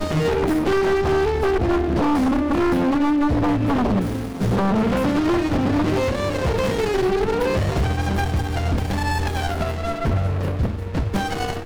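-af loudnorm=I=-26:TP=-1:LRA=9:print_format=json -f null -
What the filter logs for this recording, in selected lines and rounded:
"input_i" : "-21.5",
"input_tp" : "-13.7",
"input_lra" : "4.0",
"input_thresh" : "-31.5",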